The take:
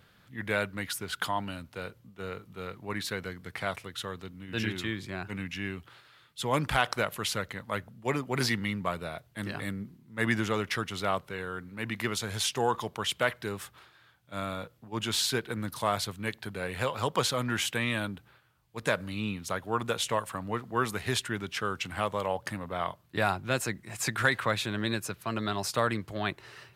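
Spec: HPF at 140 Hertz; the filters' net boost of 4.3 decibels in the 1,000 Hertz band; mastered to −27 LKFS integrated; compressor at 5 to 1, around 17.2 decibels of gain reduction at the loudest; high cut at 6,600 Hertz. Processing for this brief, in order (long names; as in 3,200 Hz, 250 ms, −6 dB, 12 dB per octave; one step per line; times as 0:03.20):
high-pass filter 140 Hz
low-pass filter 6,600 Hz
parametric band 1,000 Hz +5.5 dB
downward compressor 5 to 1, threshold −39 dBFS
level +15.5 dB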